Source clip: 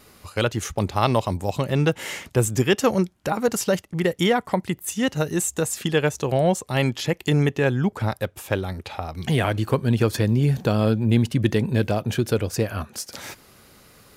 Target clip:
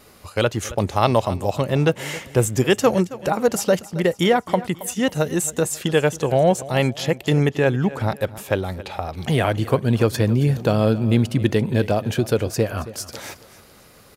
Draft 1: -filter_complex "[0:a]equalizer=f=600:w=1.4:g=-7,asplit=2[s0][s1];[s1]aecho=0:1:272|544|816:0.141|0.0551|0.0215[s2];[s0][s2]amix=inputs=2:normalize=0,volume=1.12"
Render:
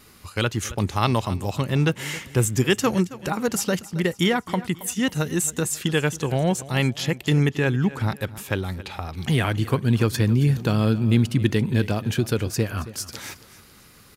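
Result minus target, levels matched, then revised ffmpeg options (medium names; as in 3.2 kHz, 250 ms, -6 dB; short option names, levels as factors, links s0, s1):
500 Hz band -4.5 dB
-filter_complex "[0:a]equalizer=f=600:w=1.4:g=3.5,asplit=2[s0][s1];[s1]aecho=0:1:272|544|816:0.141|0.0551|0.0215[s2];[s0][s2]amix=inputs=2:normalize=0,volume=1.12"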